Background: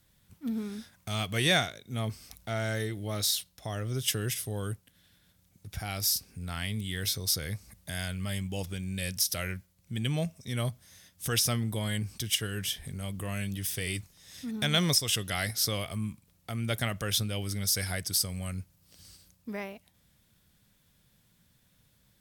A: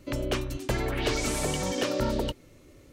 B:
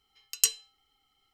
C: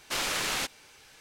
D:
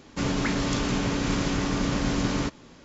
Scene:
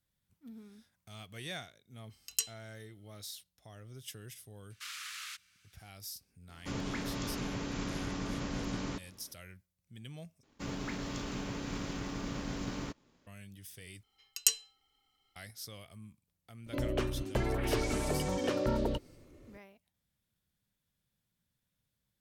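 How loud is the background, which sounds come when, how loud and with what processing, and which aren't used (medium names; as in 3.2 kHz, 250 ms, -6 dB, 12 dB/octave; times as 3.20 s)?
background -17 dB
1.95 s: add B -9 dB
4.70 s: add C -12.5 dB + elliptic high-pass 1.2 kHz
6.49 s: add D -11.5 dB
10.43 s: replace with D -12 dB + companding laws mixed up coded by A
14.03 s: replace with B -3 dB
16.66 s: add A -3 dB + treble shelf 2.2 kHz -8 dB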